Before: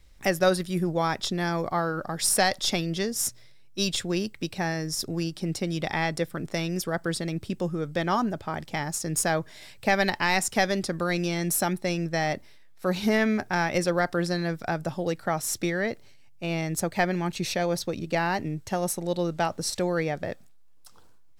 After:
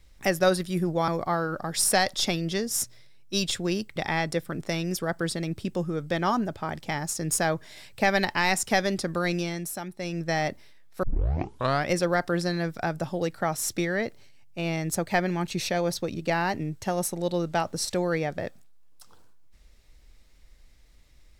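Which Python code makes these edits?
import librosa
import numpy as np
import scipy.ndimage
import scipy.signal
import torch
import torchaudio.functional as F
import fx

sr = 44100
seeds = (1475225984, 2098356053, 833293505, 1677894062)

y = fx.edit(x, sr, fx.cut(start_s=1.08, length_s=0.45),
    fx.cut(start_s=4.41, length_s=1.4),
    fx.fade_down_up(start_s=11.19, length_s=0.96, db=-9.5, fade_s=0.36),
    fx.tape_start(start_s=12.88, length_s=0.87), tone=tone)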